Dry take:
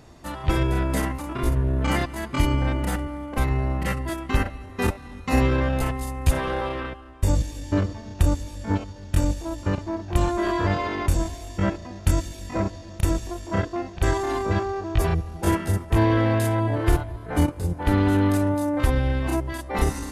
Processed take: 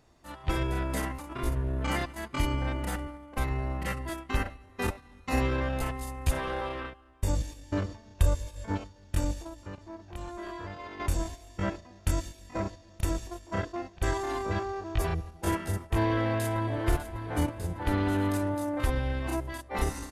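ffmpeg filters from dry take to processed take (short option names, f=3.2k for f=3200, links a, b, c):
-filter_complex "[0:a]asettb=1/sr,asplit=3[a][b][c];[a]atrim=end=8.184[d];[b]atrim=start=8.18:end=8.68,asetpts=PTS-STARTPTS,afade=t=in:d=0.004:c=qsin,afade=t=out:st=0.496:d=0.004:c=qsin,aecho=1:1:1.9:0.65,atrim=end_sample=22050[e];[c]atrim=start=8.676[f];[d][e]acrossfade=d=0.004:c1=hsin:c2=qsin[g];[g][f]acrossfade=d=0.004:c1=qsin:c2=hsin,asettb=1/sr,asplit=3[h][i][j];[h]atrim=end=9.464[k];[i]atrim=start=9.46:end=11,asetpts=PTS-STARTPTS,afade=t=in:d=0.004:c=qsin,afade=t=out:st=1.536:d=0.004:c=qsin,acompressor=threshold=-28dB:ratio=5:attack=3.2:release=140:knee=1:detection=peak[l];[j]atrim=start=10.996[m];[k][l]acrossfade=d=0.004:c1=hsin:c2=qsin[n];[n][m]acrossfade=d=0.004:c1=qsin:c2=hsin,asplit=2[o][p];[p]afade=t=in:st=15.95:d=0.01,afade=t=out:st=16.77:d=0.01,aecho=0:1:600|1200|1800|2400|3000|3600|4200|4800:0.266073|0.172947|0.112416|0.0730702|0.0474956|0.0308721|0.0200669|0.0130435[q];[o][q]amix=inputs=2:normalize=0,agate=range=-7dB:threshold=-31dB:ratio=16:detection=peak,equalizer=f=150:w=0.42:g=-4,volume=-5dB"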